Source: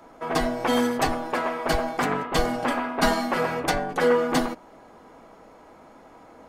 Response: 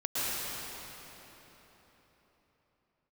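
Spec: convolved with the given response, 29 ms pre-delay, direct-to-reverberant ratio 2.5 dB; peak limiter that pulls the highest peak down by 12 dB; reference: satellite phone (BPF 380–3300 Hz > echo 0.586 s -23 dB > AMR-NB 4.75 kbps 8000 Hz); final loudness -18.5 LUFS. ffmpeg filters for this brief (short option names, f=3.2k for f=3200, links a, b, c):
-filter_complex "[0:a]alimiter=limit=-20dB:level=0:latency=1,asplit=2[a][b];[1:a]atrim=start_sample=2205,adelay=29[c];[b][c]afir=irnorm=-1:irlink=0,volume=-12dB[d];[a][d]amix=inputs=2:normalize=0,highpass=380,lowpass=3.3k,aecho=1:1:586:0.0708,volume=14.5dB" -ar 8000 -c:a libopencore_amrnb -b:a 4750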